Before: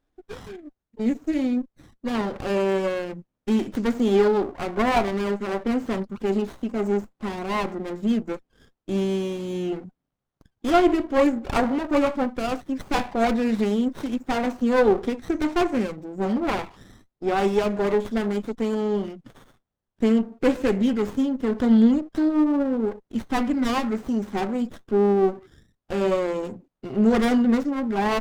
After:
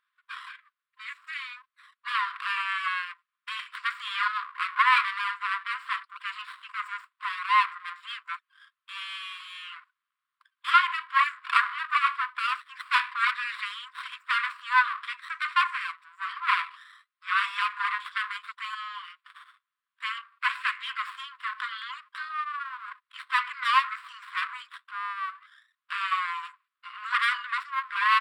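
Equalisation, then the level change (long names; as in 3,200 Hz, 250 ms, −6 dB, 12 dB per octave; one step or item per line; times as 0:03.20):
moving average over 7 samples
linear-phase brick-wall high-pass 990 Hz
+8.5 dB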